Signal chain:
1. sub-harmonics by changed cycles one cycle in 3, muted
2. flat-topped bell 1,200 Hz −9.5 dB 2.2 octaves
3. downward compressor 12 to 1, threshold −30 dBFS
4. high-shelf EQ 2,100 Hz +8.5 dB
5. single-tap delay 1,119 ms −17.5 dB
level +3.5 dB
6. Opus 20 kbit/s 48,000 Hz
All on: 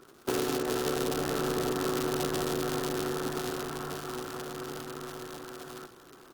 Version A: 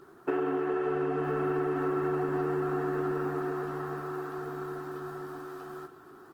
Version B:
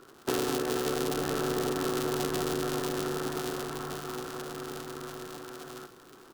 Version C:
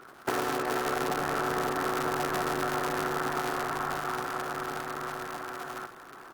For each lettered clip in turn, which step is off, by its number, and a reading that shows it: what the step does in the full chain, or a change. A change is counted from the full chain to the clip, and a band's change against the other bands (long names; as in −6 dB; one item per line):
1, change in crest factor −7.0 dB
6, change in crest factor +2.5 dB
2, change in momentary loudness spread −4 LU